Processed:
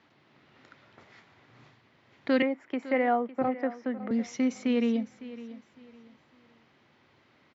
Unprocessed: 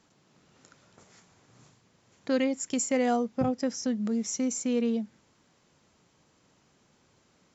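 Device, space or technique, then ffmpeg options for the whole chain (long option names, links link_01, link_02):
guitar cabinet: -filter_complex "[0:a]asettb=1/sr,asplit=3[link_01][link_02][link_03];[link_01]atrim=end=2.424[link_04];[link_02]atrim=start=2.42:end=4.11,asetpts=PTS-STARTPTS,afade=type=in:duration=0.004:curve=qsin,afade=type=out:start_time=1.686:duration=0.004:curve=qsin,acrossover=split=270 2200:gain=0.178 1 0.0891[link_05][link_06][link_07];[link_05][link_06][link_07]amix=inputs=3:normalize=0[link_08];[link_03]atrim=start=4.106[link_09];[link_04][link_08]acrossfade=duration=0.004:curve1=hsin:curve2=qsin[link_10];[link_10][link_09]acrossfade=duration=0.004:curve1=qsin:curve2=hsin,highpass=95,equalizer=frequency=180:width_type=q:width=4:gain=-9,equalizer=frequency=470:width_type=q:width=4:gain=-4,equalizer=frequency=2000:width_type=q:width=4:gain=6,lowpass=frequency=4000:width=0.5412,lowpass=frequency=4000:width=1.3066,aecho=1:1:556|1112|1668:0.158|0.0444|0.0124,volume=3.5dB"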